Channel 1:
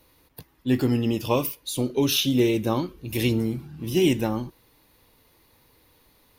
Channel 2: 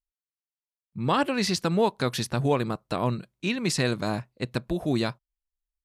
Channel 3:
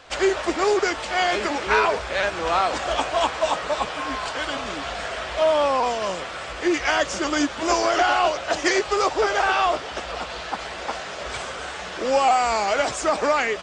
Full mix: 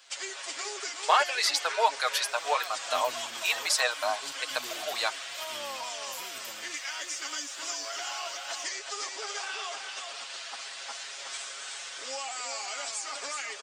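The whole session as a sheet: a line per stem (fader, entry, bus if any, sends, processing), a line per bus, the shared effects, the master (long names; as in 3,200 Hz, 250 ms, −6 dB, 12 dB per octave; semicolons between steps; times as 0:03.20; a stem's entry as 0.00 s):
−9.0 dB, 2.25 s, no send, no echo send, first difference; compressor whose output falls as the input rises −38 dBFS, ratio −0.5
+2.5 dB, 0.00 s, no send, no echo send, Butterworth high-pass 610 Hz 36 dB per octave; reverb reduction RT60 1.5 s; comb filter 6.5 ms, depth 59%
0.0 dB, 0.00 s, no send, echo send −5.5 dB, first difference; comb filter 7.3 ms, depth 67%; downward compressor, threshold −33 dBFS, peak gain reduction 9 dB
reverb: not used
echo: single-tap delay 371 ms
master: no processing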